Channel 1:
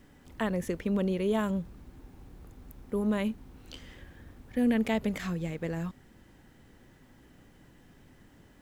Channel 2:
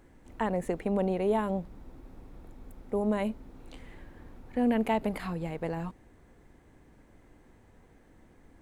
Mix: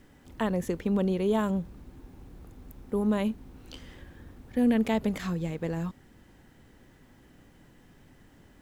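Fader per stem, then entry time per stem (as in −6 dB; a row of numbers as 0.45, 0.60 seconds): +0.5, −10.5 decibels; 0.00, 0.00 seconds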